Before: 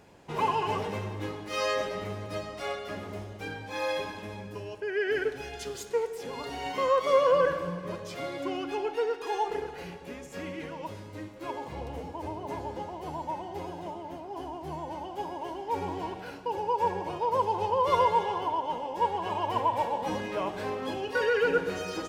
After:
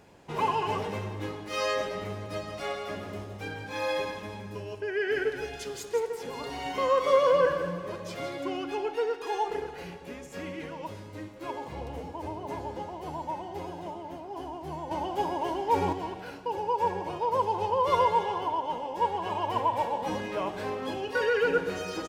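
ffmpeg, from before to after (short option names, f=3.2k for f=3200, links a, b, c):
-filter_complex "[0:a]asplit=3[a][b][c];[a]afade=t=out:st=2.46:d=0.02[d];[b]aecho=1:1:166:0.376,afade=t=in:st=2.46:d=0.02,afade=t=out:st=8.34:d=0.02[e];[c]afade=t=in:st=8.34:d=0.02[f];[d][e][f]amix=inputs=3:normalize=0,asettb=1/sr,asplit=3[g][h][i];[g]atrim=end=14.914[j];[h]atrim=start=14.91:end=15.93,asetpts=PTS-STARTPTS,afade=t=in:d=0.004:c=qsin,afade=t=out:st=1.016:d=0.004:c=qsin,acontrast=56[k];[i]atrim=start=15.926[l];[j][k]acrossfade=d=0.004:c1=hsin:c2=qsin[m];[m][l]acrossfade=d=0.004:c1=qsin:c2=hsin"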